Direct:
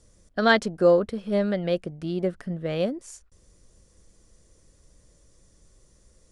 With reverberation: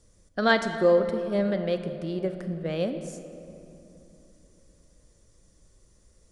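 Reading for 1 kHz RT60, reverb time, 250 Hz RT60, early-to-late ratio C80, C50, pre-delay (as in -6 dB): 2.8 s, 3.0 s, 3.7 s, 9.5 dB, 9.0 dB, 30 ms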